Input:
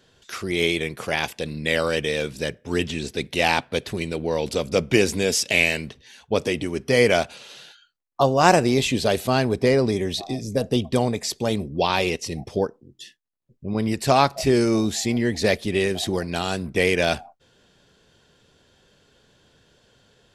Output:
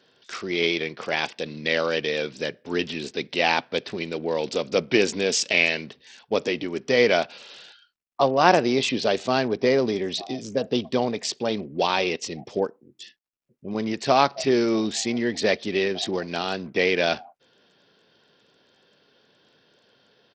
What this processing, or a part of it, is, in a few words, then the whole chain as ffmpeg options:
Bluetooth headset: -af "highpass=210,aresample=16000,aresample=44100,volume=-1dB" -ar 44100 -c:a sbc -b:a 64k

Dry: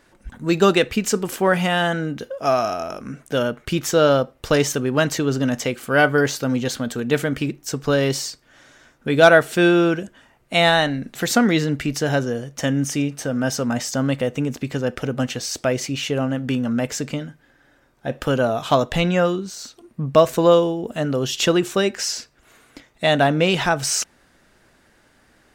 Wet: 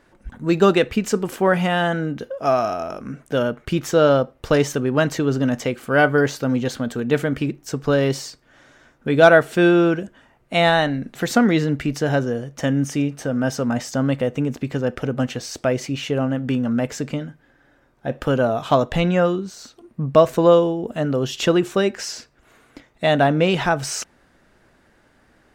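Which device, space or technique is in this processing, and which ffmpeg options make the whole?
behind a face mask: -af "highshelf=f=2.7k:g=-8,volume=1dB"

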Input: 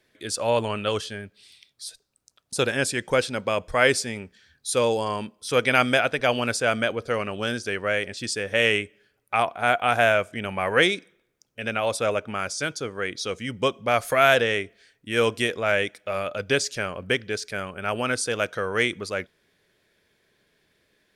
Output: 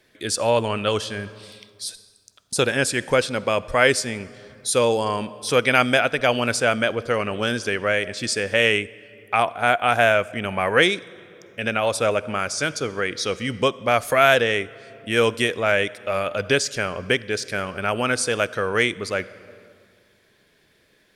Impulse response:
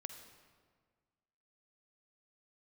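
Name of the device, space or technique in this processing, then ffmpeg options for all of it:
ducked reverb: -filter_complex "[0:a]asplit=3[a][b][c];[1:a]atrim=start_sample=2205[d];[b][d]afir=irnorm=-1:irlink=0[e];[c]apad=whole_len=932891[f];[e][f]sidechaincompress=threshold=-26dB:ratio=8:attack=5.3:release=708,volume=2.5dB[g];[a][g]amix=inputs=2:normalize=0,volume=1dB"

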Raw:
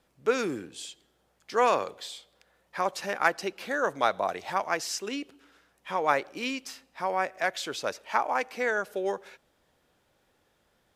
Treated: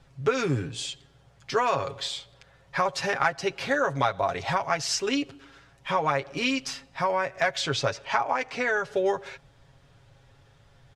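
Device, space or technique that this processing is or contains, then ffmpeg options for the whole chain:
jukebox: -filter_complex "[0:a]lowpass=7k,lowshelf=f=170:t=q:w=1.5:g=12,acompressor=threshold=-30dB:ratio=4,asettb=1/sr,asplit=3[a][b][c];[a]atrim=end=7.604[d];[b]atrim=start=7.6:end=8.96,asetpts=PTS-STARTPTS,afade=t=in:d=0.004:c=qsin,afade=t=out:st=1.356:d=0.004:c=qsin,lowpass=8.7k[e];[c]atrim=start=8.956[f];[d][e]acrossfade=d=0.004:c1=hsin:c2=qsin[g];[g][f]acrossfade=d=0.004:c1=qsin:c2=hsin,aecho=1:1:7.3:0.65,volume=7dB"

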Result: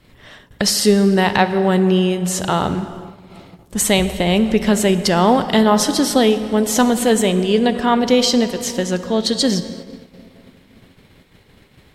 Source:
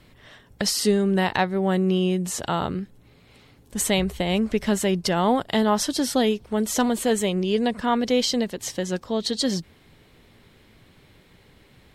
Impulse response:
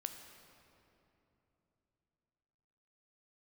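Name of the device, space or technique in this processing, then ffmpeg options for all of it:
keyed gated reverb: -filter_complex "[0:a]asplit=3[a][b][c];[1:a]atrim=start_sample=2205[d];[b][d]afir=irnorm=-1:irlink=0[e];[c]apad=whole_len=526700[f];[e][f]sidechaingate=range=-33dB:threshold=-52dB:ratio=16:detection=peak,volume=7dB[g];[a][g]amix=inputs=2:normalize=0,volume=-1.5dB"

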